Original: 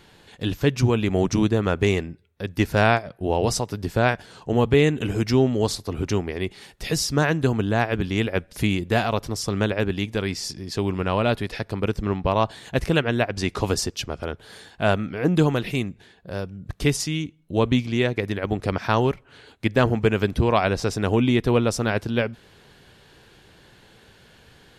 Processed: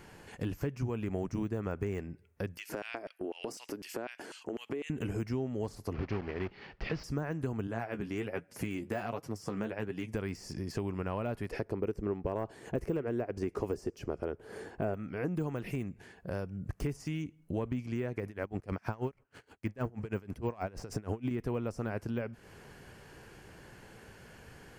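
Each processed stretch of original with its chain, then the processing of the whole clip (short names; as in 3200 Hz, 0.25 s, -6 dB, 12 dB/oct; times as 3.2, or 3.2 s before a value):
2.57–4.9 LFO high-pass square 4 Hz 310–2900 Hz + compressor 3:1, threshold -36 dBFS + mismatched tape noise reduction decoder only
5.94–7.04 block floating point 3-bit + steep low-pass 4300 Hz
7.67–10.14 HPF 120 Hz + flange 1.3 Hz, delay 6.1 ms, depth 9.2 ms, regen +34%
11.51–14.94 bell 390 Hz +10.5 dB 1.1 oct + mismatched tape noise reduction decoder only
18.26–21.31 sample leveller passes 1 + dB-linear tremolo 6.3 Hz, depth 27 dB
whole clip: de-esser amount 90%; bell 3700 Hz -15 dB 0.48 oct; compressor 4:1, threshold -34 dBFS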